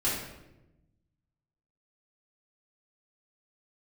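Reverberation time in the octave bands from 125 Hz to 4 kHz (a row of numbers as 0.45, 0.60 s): 1.7, 1.4, 1.1, 0.80, 0.80, 0.65 s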